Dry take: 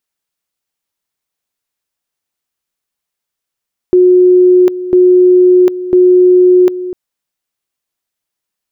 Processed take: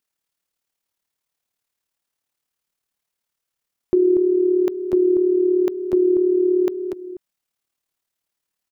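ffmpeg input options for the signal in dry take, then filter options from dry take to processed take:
-f lavfi -i "aevalsrc='pow(10,(-3-14*gte(mod(t,1),0.75))/20)*sin(2*PI*363*t)':duration=3:sample_rate=44100"
-filter_complex "[0:a]acompressor=threshold=-12dB:ratio=5,tremolo=f=37:d=0.571,asplit=2[link_01][link_02];[link_02]aecho=0:1:238:0.335[link_03];[link_01][link_03]amix=inputs=2:normalize=0"

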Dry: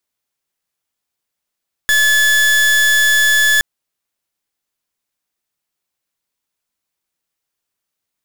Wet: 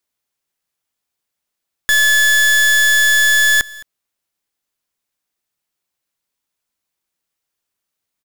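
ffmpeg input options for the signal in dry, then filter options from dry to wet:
-f lavfi -i "aevalsrc='0.251*(2*lt(mod(1720*t,1),0.37)-1)':duration=1.72:sample_rate=44100"
-af "aecho=1:1:215:0.0841"

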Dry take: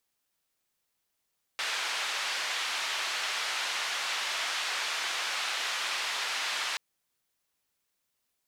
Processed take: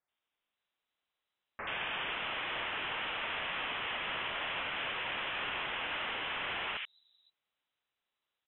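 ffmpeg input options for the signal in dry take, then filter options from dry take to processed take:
-f lavfi -i "anoisesrc=color=white:duration=5.18:sample_rate=44100:seed=1,highpass=frequency=920,lowpass=frequency=3800,volume=-19.2dB"
-filter_complex "[0:a]asoftclip=type=tanh:threshold=-25dB,acrossover=split=230|2100[link_01][link_02][link_03];[link_02]adelay=80[link_04];[link_01]adelay=520[link_05];[link_05][link_04][link_03]amix=inputs=3:normalize=0,lowpass=frequency=3400:width_type=q:width=0.5098,lowpass=frequency=3400:width_type=q:width=0.6013,lowpass=frequency=3400:width_type=q:width=0.9,lowpass=frequency=3400:width_type=q:width=2.563,afreqshift=-4000"

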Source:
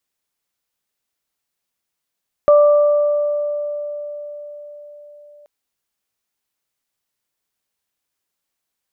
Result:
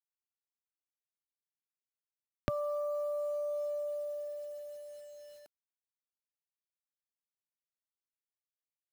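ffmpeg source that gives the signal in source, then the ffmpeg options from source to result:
-f lavfi -i "aevalsrc='0.473*pow(10,-3*t/4.91)*sin(2*PI*588*t)+0.133*pow(10,-3*t/2.27)*sin(2*PI*1176*t)':duration=2.98:sample_rate=44100"
-filter_complex "[0:a]equalizer=frequency=125:width_type=o:width=1:gain=9,equalizer=frequency=250:width_type=o:width=1:gain=9,equalizer=frequency=500:width_type=o:width=1:gain=-11,equalizer=frequency=1000:width_type=o:width=1:gain=-5,acrossover=split=110[link_01][link_02];[link_02]acompressor=threshold=-33dB:ratio=10[link_03];[link_01][link_03]amix=inputs=2:normalize=0,acrusher=bits=9:mix=0:aa=0.000001"

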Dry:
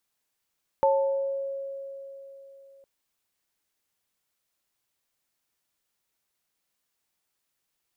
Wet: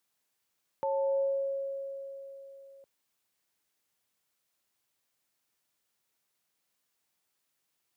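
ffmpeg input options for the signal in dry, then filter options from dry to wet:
-f lavfi -i "aevalsrc='0.112*pow(10,-3*t/3.68)*sin(2*PI*548*t)+0.106*pow(10,-3*t/0.79)*sin(2*PI*882*t)':duration=2.01:sample_rate=44100"
-af "alimiter=level_in=0.5dB:limit=-24dB:level=0:latency=1,volume=-0.5dB,highpass=81"

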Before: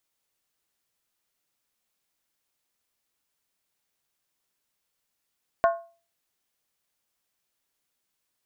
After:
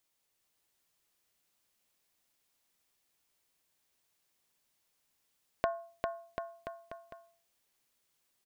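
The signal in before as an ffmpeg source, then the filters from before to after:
-f lavfi -i "aevalsrc='0.188*pow(10,-3*t/0.37)*sin(2*PI*676*t)+0.0944*pow(10,-3*t/0.293)*sin(2*PI*1077.5*t)+0.0473*pow(10,-3*t/0.253)*sin(2*PI*1443.9*t)+0.0237*pow(10,-3*t/0.244)*sin(2*PI*1552.1*t)+0.0119*pow(10,-3*t/0.227)*sin(2*PI*1793.4*t)':duration=0.63:sample_rate=44100"
-af "equalizer=frequency=1400:width=3.6:gain=-2.5,acompressor=threshold=-29dB:ratio=6,aecho=1:1:400|740|1029|1275|1483:0.631|0.398|0.251|0.158|0.1"

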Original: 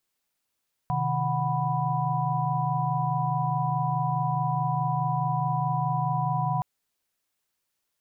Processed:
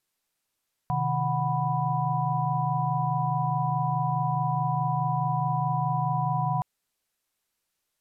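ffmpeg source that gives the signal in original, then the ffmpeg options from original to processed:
-f lavfi -i "aevalsrc='0.0355*(sin(2*PI*130.81*t)+sin(2*PI*155.56*t)+sin(2*PI*739.99*t)+sin(2*PI*987.77*t))':duration=5.72:sample_rate=44100"
-ar 32000 -c:a sbc -b:a 192k

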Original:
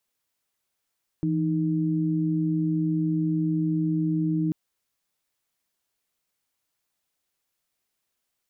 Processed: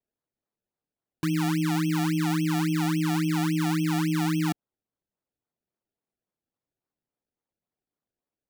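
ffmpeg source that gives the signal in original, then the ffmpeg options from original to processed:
-f lavfi -i "aevalsrc='0.0596*(sin(2*PI*164.81*t)+sin(2*PI*311.13*t))':duration=3.29:sample_rate=44100"
-af "bandpass=frequency=260:width_type=q:width=0.51:csg=0,acrusher=samples=29:mix=1:aa=0.000001:lfo=1:lforange=29:lforate=3.6"

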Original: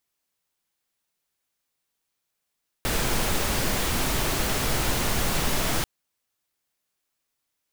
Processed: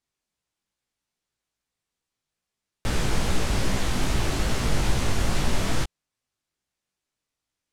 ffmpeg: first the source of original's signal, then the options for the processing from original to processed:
-f lavfi -i "anoisesrc=color=pink:amplitude=0.305:duration=2.99:sample_rate=44100:seed=1"
-af "lowpass=8800,lowshelf=frequency=250:gain=8,flanger=delay=15.5:depth=5.6:speed=2.4"

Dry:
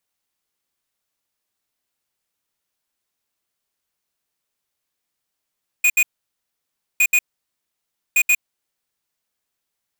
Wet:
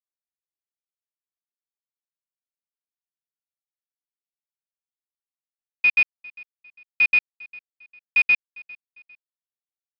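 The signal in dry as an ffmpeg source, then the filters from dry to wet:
-f lavfi -i "aevalsrc='0.188*(2*lt(mod(2470*t,1),0.5)-1)*clip(min(mod(mod(t,1.16),0.13),0.06-mod(mod(t,1.16),0.13))/0.005,0,1)*lt(mod(t,1.16),0.26)':duration=3.48:sample_rate=44100"
-af "aresample=11025,acrusher=bits=5:mix=0:aa=0.5,aresample=44100,aecho=1:1:401|802:0.0708|0.0255"

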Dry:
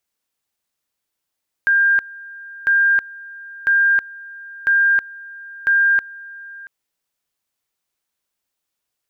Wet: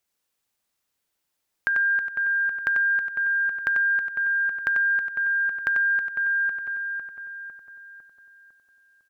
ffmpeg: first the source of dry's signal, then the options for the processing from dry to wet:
-f lavfi -i "aevalsrc='pow(10,(-11.5-21.5*gte(mod(t,1),0.32))/20)*sin(2*PI*1600*t)':duration=5:sample_rate=44100"
-filter_complex "[0:a]asplit=2[link_01][link_02];[link_02]adelay=503,lowpass=frequency=2000:poles=1,volume=-8.5dB,asplit=2[link_03][link_04];[link_04]adelay=503,lowpass=frequency=2000:poles=1,volume=0.53,asplit=2[link_05][link_06];[link_06]adelay=503,lowpass=frequency=2000:poles=1,volume=0.53,asplit=2[link_07][link_08];[link_08]adelay=503,lowpass=frequency=2000:poles=1,volume=0.53,asplit=2[link_09][link_10];[link_10]adelay=503,lowpass=frequency=2000:poles=1,volume=0.53,asplit=2[link_11][link_12];[link_12]adelay=503,lowpass=frequency=2000:poles=1,volume=0.53[link_13];[link_03][link_05][link_07][link_09][link_11][link_13]amix=inputs=6:normalize=0[link_14];[link_01][link_14]amix=inputs=2:normalize=0,acompressor=threshold=-22dB:ratio=12,asplit=2[link_15][link_16];[link_16]aecho=0:1:93:0.531[link_17];[link_15][link_17]amix=inputs=2:normalize=0"

